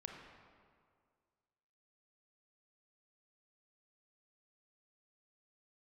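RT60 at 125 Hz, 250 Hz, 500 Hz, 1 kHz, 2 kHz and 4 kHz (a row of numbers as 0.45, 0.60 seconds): 2.0, 2.0, 2.1, 2.0, 1.6, 1.3 seconds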